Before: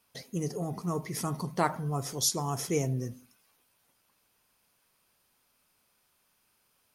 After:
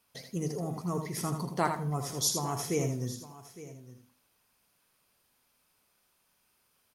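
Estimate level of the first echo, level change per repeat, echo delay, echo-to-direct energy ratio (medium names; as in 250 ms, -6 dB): -7.0 dB, no regular repeats, 80 ms, -6.5 dB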